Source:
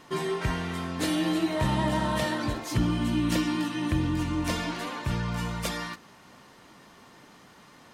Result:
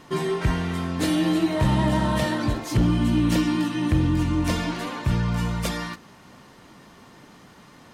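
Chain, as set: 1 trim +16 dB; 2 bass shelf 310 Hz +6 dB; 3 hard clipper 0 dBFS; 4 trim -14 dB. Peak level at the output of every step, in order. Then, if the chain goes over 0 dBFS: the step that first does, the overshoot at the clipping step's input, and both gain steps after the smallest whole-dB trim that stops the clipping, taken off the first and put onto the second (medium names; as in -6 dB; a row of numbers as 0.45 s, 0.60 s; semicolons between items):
+2.0 dBFS, +6.0 dBFS, 0.0 dBFS, -14.0 dBFS; step 1, 6.0 dB; step 1 +10 dB, step 4 -8 dB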